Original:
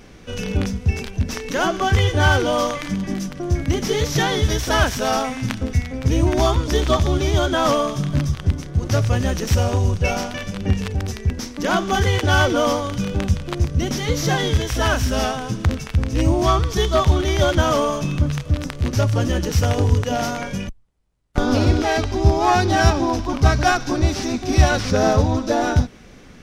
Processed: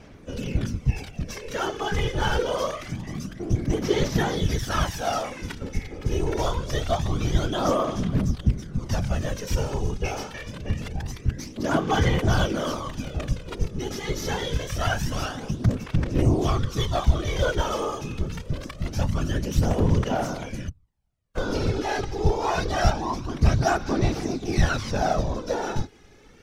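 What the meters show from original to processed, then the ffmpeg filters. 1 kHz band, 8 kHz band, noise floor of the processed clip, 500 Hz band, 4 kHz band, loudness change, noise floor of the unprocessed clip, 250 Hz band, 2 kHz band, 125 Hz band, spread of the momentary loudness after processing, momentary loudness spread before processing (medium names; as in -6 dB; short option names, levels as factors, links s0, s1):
-7.0 dB, -7.5 dB, -47 dBFS, -6.5 dB, -7.5 dB, -6.5 dB, -43 dBFS, -6.0 dB, -8.0 dB, -6.5 dB, 10 LU, 8 LU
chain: -af "afftfilt=real='hypot(re,im)*cos(2*PI*random(0))':imag='hypot(re,im)*sin(2*PI*random(1))':win_size=512:overlap=0.75,aphaser=in_gain=1:out_gain=1:delay=2.4:decay=0.49:speed=0.25:type=sinusoidal,volume=0.75"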